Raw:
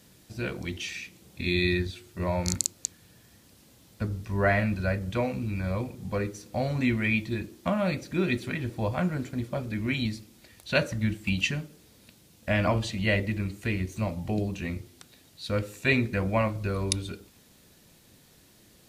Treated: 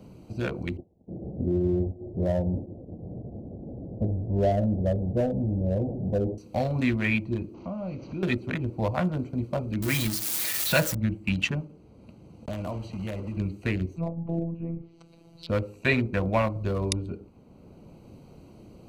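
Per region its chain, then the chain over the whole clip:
0:00.77–0:06.38: converter with a step at zero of −30.5 dBFS + Butterworth low-pass 720 Hz 48 dB per octave + downward expander −35 dBFS
0:07.54–0:08.23: linear delta modulator 32 kbit/s, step −40.5 dBFS + downward compressor 2 to 1, threshold −42 dBFS
0:09.82–0:10.95: spike at every zero crossing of −19 dBFS + comb filter 6.2 ms, depth 63%
0:11.60–0:13.37: one scale factor per block 3 bits + low-pass filter 11,000 Hz + downward compressor 2.5 to 1, threshold −38 dBFS
0:13.96–0:15.49: phases set to zero 167 Hz + treble cut that deepens with the level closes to 850 Hz, closed at −31 dBFS
whole clip: adaptive Wiener filter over 25 samples; dynamic equaliser 880 Hz, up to +4 dB, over −39 dBFS, Q 0.74; multiband upward and downward compressor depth 40%; level +1 dB

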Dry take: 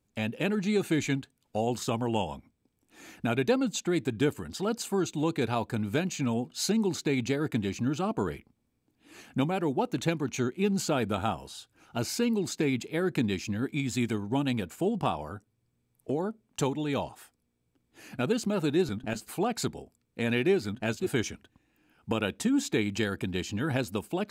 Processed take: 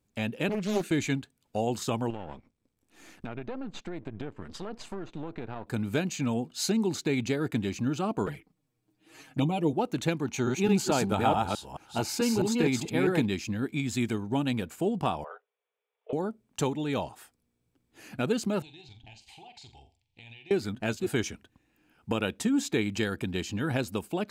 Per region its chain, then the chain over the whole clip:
0:00.49–0:00.91: elliptic high-pass filter 170 Hz + parametric band 880 Hz −11.5 dB 0.58 octaves + highs frequency-modulated by the lows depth 0.65 ms
0:02.10–0:05.67: gain on one half-wave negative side −12 dB + treble cut that deepens with the level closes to 2,000 Hz, closed at −27 dBFS + downward compressor 5 to 1, threshold −32 dBFS
0:08.26–0:09.73: low-shelf EQ 84 Hz −2.5 dB + comb filter 6.4 ms, depth 74% + flanger swept by the level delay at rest 10.1 ms, full sweep at −24 dBFS
0:10.25–0:13.26: delay that plays each chunk backwards 217 ms, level −1.5 dB + parametric band 850 Hz +8 dB 0.3 octaves
0:15.24–0:16.13: Chebyshev band-pass filter 430–3,500 Hz, order 5 + highs frequency-modulated by the lows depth 0.14 ms
0:18.62–0:20.51: drawn EQ curve 110 Hz 0 dB, 200 Hz −18 dB, 320 Hz −13 dB, 560 Hz −18 dB, 830 Hz +4 dB, 1,300 Hz −28 dB, 2,100 Hz 0 dB, 3,100 Hz +7 dB, 6,900 Hz −6 dB, 13,000 Hz −25 dB + downward compressor 5 to 1, threshold −49 dBFS + flutter between parallel walls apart 7.5 metres, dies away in 0.28 s
whole clip: no processing

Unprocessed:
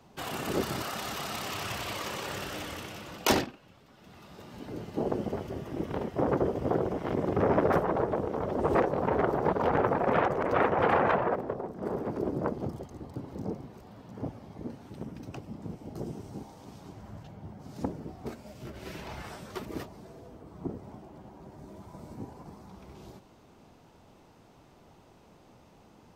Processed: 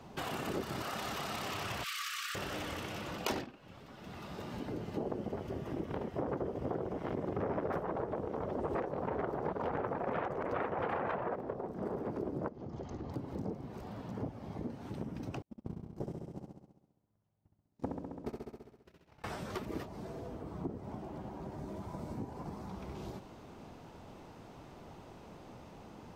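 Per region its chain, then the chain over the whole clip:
0:01.84–0:02.35: high-shelf EQ 3,000 Hz +6 dB + gain into a clipping stage and back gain 28 dB + linear-phase brick-wall high-pass 1,100 Hz
0:12.48–0:13.11: Butterworth low-pass 7,100 Hz 72 dB per octave + downward compressor 4 to 1, threshold −41 dBFS
0:15.42–0:19.24: noise gate −37 dBFS, range −45 dB + flutter between parallel walls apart 11.4 metres, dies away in 1 s
whole clip: high-shelf EQ 4,300 Hz −5.5 dB; downward compressor 3 to 1, threshold −44 dBFS; level +5.5 dB

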